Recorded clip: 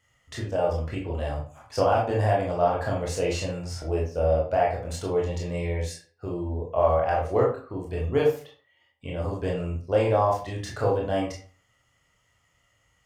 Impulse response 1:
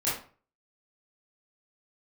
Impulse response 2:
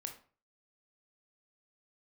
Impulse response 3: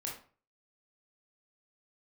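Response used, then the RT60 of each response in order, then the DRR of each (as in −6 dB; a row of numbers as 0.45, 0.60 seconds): 3; 0.40, 0.40, 0.40 seconds; −10.5, 3.5, −3.0 decibels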